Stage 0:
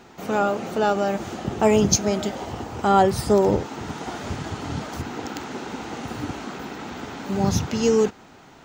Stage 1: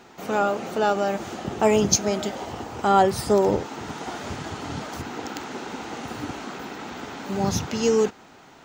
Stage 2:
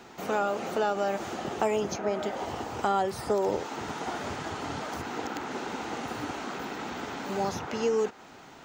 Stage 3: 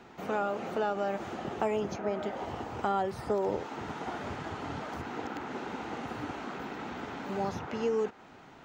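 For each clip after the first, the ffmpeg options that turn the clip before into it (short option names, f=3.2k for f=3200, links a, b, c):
-af "lowshelf=f=200:g=-6.5"
-filter_complex "[0:a]acrossover=split=340|2300[a][b][c];[a]acompressor=threshold=-40dB:ratio=4[d];[b]acompressor=threshold=-25dB:ratio=4[e];[c]acompressor=threshold=-45dB:ratio=4[f];[d][e][f]amix=inputs=3:normalize=0"
-af "bass=f=250:g=3,treble=f=4k:g=-9,volume=-3.5dB"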